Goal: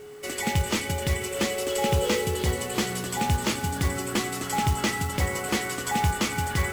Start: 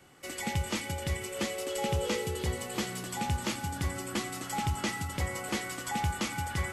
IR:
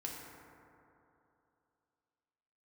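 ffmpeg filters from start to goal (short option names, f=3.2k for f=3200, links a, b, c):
-filter_complex "[0:a]aeval=exprs='val(0)+0.00447*sin(2*PI*420*n/s)':c=same,acrusher=bits=4:mode=log:mix=0:aa=0.000001,asplit=2[a][b];[1:a]atrim=start_sample=2205,asetrate=24696,aresample=44100[c];[b][c]afir=irnorm=-1:irlink=0,volume=-21.5dB[d];[a][d]amix=inputs=2:normalize=0,volume=6dB"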